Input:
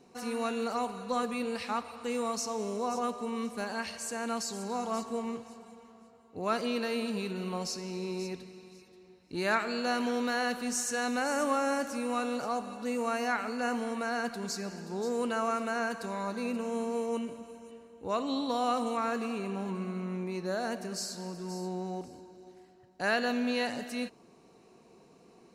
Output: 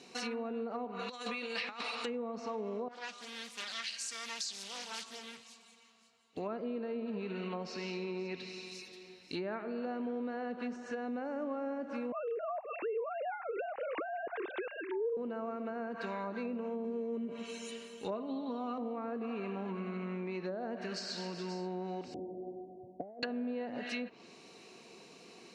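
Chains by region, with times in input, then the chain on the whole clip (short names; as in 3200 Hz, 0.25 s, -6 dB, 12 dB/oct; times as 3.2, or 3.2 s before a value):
0.99–2.06 tone controls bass -7 dB, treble +5 dB + negative-ratio compressor -38 dBFS, ratio -0.5
2.88–6.37 passive tone stack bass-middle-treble 5-5-5 + Doppler distortion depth 0.58 ms
12.12–15.17 sine-wave speech + low shelf 460 Hz +6.5 dB
16.84–18.78 high shelf 2900 Hz +8 dB + comb 4.9 ms, depth 59%
22.14–23.23 steep low-pass 780 Hz 72 dB/oct + negative-ratio compressor -40 dBFS, ratio -0.5
whole clip: treble ducked by the level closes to 590 Hz, closed at -28.5 dBFS; weighting filter D; compressor 2.5:1, threshold -40 dBFS; gain +2.5 dB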